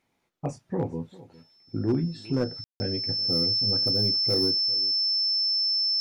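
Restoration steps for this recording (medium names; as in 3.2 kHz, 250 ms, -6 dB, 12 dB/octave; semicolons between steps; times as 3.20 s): clip repair -17.5 dBFS; band-stop 5.3 kHz, Q 30; room tone fill 2.64–2.80 s; inverse comb 400 ms -20 dB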